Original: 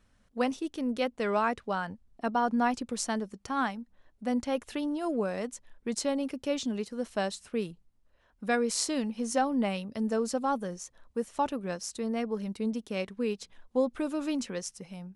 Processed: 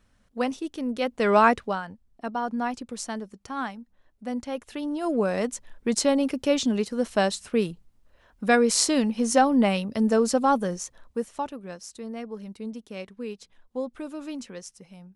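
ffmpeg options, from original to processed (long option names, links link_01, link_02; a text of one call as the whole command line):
ffmpeg -i in.wav -af "volume=20dB,afade=type=in:start_time=1:duration=0.46:silence=0.375837,afade=type=out:start_time=1.46:duration=0.36:silence=0.251189,afade=type=in:start_time=4.71:duration=0.72:silence=0.334965,afade=type=out:start_time=10.78:duration=0.71:silence=0.251189" out.wav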